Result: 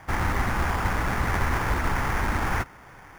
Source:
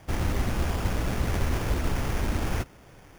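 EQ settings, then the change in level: band shelf 1300 Hz +10 dB; 0.0 dB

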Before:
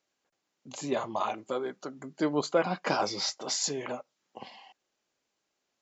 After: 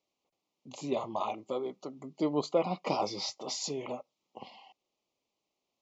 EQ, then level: Butterworth band-stop 1600 Hz, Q 1.6; air absorption 79 m; -1.5 dB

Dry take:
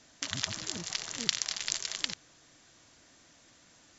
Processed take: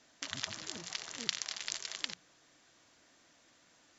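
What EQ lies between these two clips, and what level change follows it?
low shelf 170 Hz -9.5 dB; high shelf 5700 Hz -7 dB; notches 60/120/180 Hz; -3.0 dB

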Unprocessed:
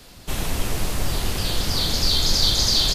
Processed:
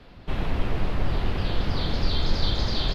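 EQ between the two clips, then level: air absorption 370 m; 0.0 dB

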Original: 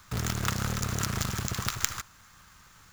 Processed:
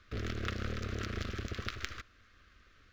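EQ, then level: air absorption 280 m; fixed phaser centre 370 Hz, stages 4; 0.0 dB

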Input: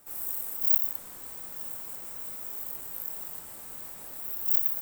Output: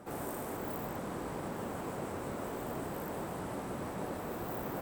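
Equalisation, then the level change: band-pass 340 Hz, Q 0.5; low shelf 270 Hz +5.5 dB; +15.5 dB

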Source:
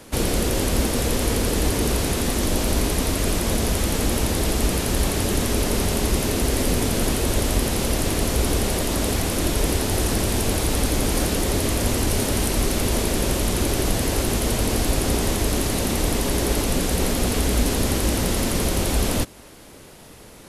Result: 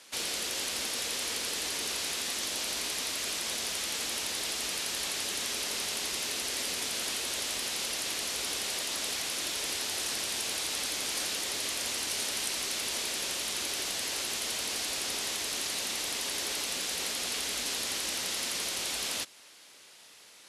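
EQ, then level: band-pass 4300 Hz, Q 0.71; -2.0 dB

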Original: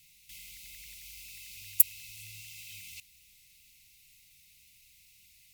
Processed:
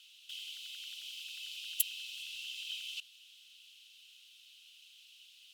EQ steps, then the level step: double band-pass 2100 Hz, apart 1.1 oct; tilt +2 dB/oct; +12.5 dB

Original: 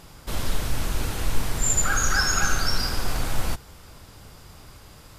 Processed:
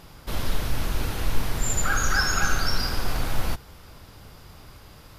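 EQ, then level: bell 7900 Hz -7 dB 0.64 oct; 0.0 dB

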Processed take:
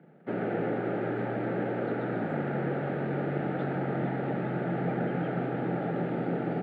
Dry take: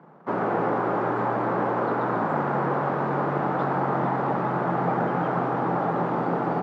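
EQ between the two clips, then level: fixed phaser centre 2500 Hz, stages 4; -2.0 dB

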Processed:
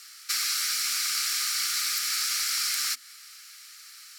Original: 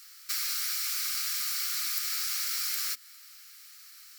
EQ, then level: LPF 11000 Hz 12 dB/oct; +6.5 dB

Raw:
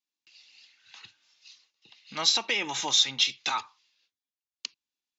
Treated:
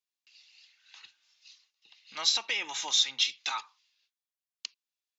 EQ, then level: HPF 980 Hz 6 dB/oct; -2.5 dB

